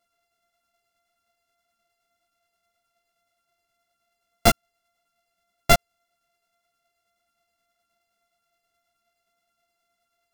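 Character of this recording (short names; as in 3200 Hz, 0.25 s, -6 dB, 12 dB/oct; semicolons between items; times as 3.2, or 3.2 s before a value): a buzz of ramps at a fixed pitch in blocks of 64 samples; tremolo saw down 9.5 Hz, depth 40%; a shimmering, thickened sound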